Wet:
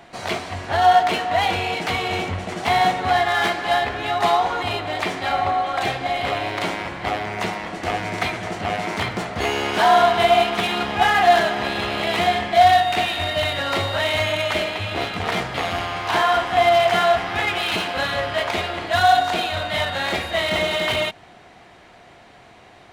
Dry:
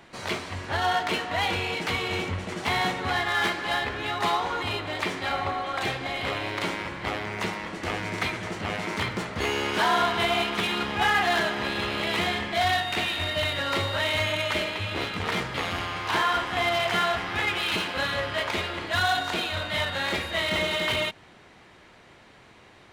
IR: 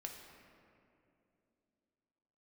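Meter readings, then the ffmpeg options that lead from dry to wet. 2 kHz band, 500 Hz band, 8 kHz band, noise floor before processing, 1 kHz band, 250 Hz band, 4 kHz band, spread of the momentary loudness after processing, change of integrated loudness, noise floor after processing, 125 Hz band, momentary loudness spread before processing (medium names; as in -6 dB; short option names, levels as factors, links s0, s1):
+3.5 dB, +9.0 dB, +3.5 dB, -53 dBFS, +9.5 dB, +3.5 dB, +3.5 dB, 10 LU, +6.0 dB, -47 dBFS, +3.5 dB, 7 LU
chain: -af "equalizer=f=710:t=o:w=0.26:g=10.5,volume=1.5"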